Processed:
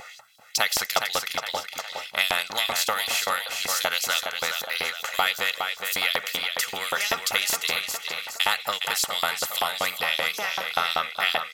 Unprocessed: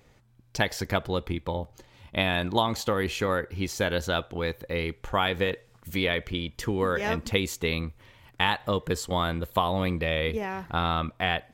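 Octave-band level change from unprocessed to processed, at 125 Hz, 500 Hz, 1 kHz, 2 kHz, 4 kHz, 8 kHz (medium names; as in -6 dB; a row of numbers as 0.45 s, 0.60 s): -19.5 dB, -5.0 dB, +1.5 dB, +5.0 dB, +7.5 dB, +13.0 dB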